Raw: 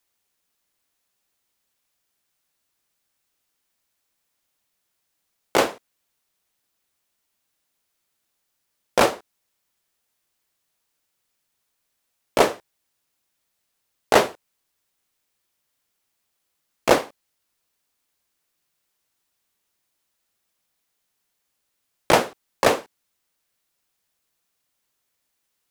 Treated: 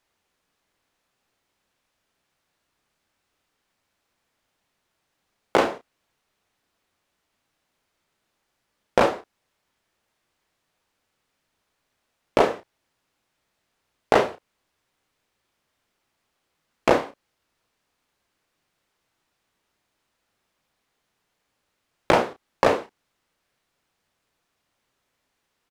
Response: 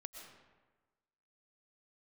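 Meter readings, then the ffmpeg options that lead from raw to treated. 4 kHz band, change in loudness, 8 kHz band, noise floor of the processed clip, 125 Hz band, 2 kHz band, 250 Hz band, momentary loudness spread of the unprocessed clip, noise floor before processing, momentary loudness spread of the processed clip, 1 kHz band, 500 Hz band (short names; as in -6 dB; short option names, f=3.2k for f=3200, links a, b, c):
-6.0 dB, -1.5 dB, -11.0 dB, -77 dBFS, 0.0 dB, -2.5 dB, 0.0 dB, 12 LU, -76 dBFS, 13 LU, -1.0 dB, -0.5 dB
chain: -filter_complex "[0:a]asplit=2[a][b];[b]adelay=32,volume=-9.5dB[c];[a][c]amix=inputs=2:normalize=0,acompressor=threshold=-25dB:ratio=2.5,aemphasis=mode=reproduction:type=75kf,volume=7.5dB"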